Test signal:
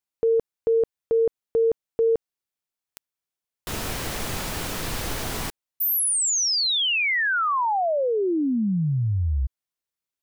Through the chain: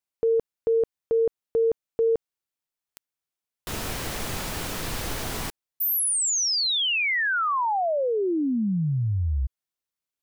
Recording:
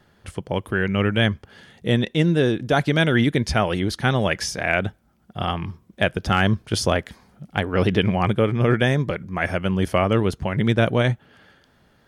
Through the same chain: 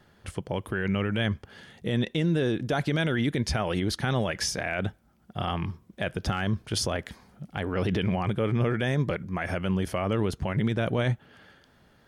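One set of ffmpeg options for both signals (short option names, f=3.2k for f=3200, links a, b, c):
-af "alimiter=limit=-16dB:level=0:latency=1:release=41,volume=-1.5dB"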